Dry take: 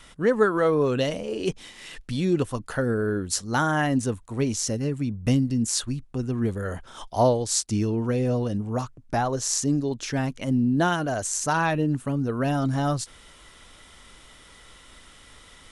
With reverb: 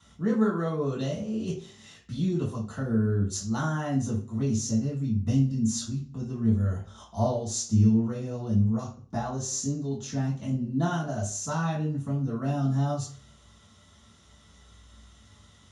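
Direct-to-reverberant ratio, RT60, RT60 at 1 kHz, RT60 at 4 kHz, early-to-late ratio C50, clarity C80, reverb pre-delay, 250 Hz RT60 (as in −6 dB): −5.5 dB, 0.45 s, 0.40 s, 0.40 s, 7.0 dB, 12.0 dB, 3 ms, 0.50 s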